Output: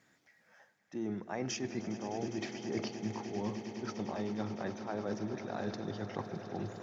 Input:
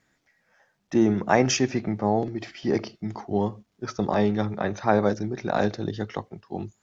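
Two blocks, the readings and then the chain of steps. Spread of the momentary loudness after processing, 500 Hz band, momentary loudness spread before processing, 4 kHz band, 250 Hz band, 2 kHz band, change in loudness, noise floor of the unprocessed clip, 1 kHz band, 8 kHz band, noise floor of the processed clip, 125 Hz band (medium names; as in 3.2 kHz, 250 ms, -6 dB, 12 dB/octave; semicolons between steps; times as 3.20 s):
3 LU, -14.0 dB, 14 LU, -11.5 dB, -12.0 dB, -13.5 dB, -13.5 dB, -73 dBFS, -15.0 dB, no reading, -70 dBFS, -12.5 dB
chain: high-pass 110 Hz; reverse; compression 6:1, threshold -36 dBFS, peak gain reduction 21 dB; reverse; echo with a slow build-up 102 ms, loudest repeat 8, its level -16 dB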